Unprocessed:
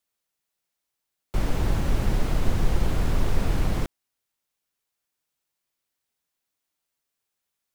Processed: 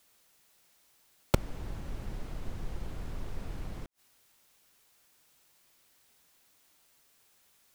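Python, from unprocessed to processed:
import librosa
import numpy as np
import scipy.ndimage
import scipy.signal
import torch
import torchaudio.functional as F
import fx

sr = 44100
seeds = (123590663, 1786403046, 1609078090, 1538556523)

y = fx.gate_flip(x, sr, shuts_db=-22.0, range_db=-32)
y = y * 10.0 ** (16.0 / 20.0)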